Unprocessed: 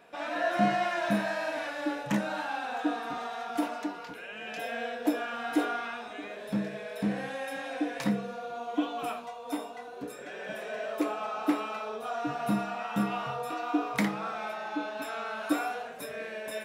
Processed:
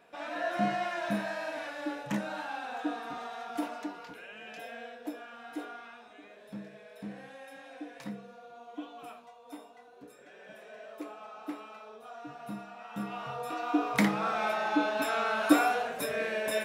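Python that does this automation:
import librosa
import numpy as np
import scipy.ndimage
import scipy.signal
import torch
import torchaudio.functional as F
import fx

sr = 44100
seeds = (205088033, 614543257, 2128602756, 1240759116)

y = fx.gain(x, sr, db=fx.line((4.18, -4.0), (5.16, -12.0), (12.75, -12.0), (13.44, -2.0), (14.51, 6.0)))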